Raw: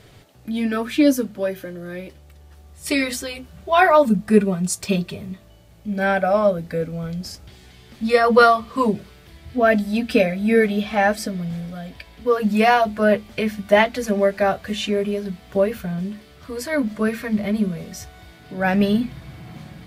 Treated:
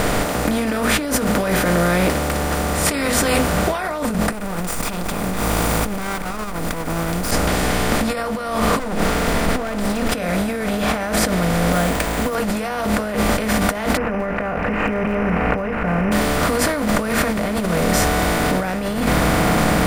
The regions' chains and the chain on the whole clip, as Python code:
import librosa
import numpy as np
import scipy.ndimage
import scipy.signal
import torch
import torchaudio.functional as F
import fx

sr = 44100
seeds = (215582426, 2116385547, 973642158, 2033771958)

y = fx.chain(x, sr, fx.lower_of_two(delay_ms=0.84),
    fx.high_shelf(hz=7100.0, db=11.0),
    fx.env_flatten(amount_pct=50), at=(4.32, 7.31))
y = fx.chain(y, sr, fx.lower_of_two(delay_ms=4.4),
    fx.high_shelf(hz=9100.0, db=-10.0), at=(8.79, 10.12))
y = fx.chain(y, sr, fx.resample_bad(factor=4, down='none', up='hold'),
    fx.upward_expand(threshold_db=-29.0, expansion=1.5), at=(11.72, 12.35))
y = fx.chain(y, sr, fx.notch_comb(f0_hz=320.0),
    fx.resample_bad(factor=8, down='none', up='filtered'),
    fx.sustainer(db_per_s=46.0), at=(13.97, 16.12))
y = fx.bin_compress(y, sr, power=0.4)
y = fx.low_shelf(y, sr, hz=78.0, db=10.5)
y = fx.over_compress(y, sr, threshold_db=-17.0, ratio=-1.0)
y = y * librosa.db_to_amplitude(-3.0)